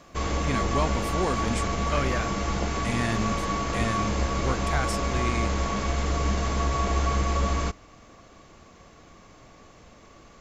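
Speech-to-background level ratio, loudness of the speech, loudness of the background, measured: -4.5 dB, -32.0 LUFS, -27.5 LUFS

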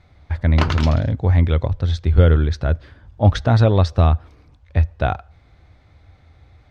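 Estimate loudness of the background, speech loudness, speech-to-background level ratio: -27.5 LUFS, -18.5 LUFS, 9.0 dB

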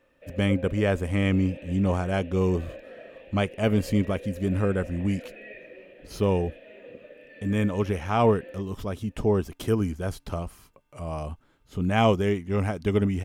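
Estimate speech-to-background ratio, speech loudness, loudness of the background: 17.5 dB, -26.5 LUFS, -44.0 LUFS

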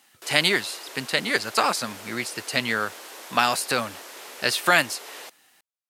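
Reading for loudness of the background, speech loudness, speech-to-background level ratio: -40.0 LUFS, -24.0 LUFS, 16.0 dB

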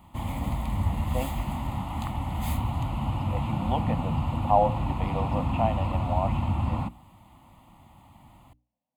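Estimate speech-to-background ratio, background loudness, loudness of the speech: -1.5 dB, -29.5 LUFS, -31.0 LUFS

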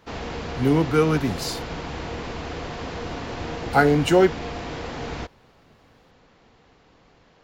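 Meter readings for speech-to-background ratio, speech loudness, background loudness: 11.5 dB, -21.0 LUFS, -32.5 LUFS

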